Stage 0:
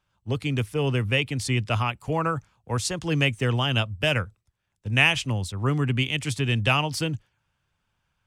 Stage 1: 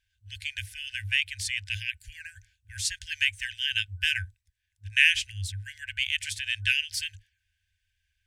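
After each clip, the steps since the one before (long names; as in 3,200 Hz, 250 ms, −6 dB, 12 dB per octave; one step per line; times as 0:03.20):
brick-wall band-stop 100–1,500 Hz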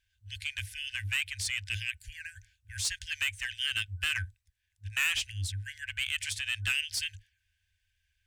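soft clipping −23 dBFS, distortion −6 dB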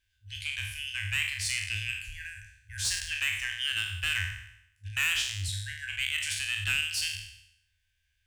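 peak hold with a decay on every bin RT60 0.78 s
level −1 dB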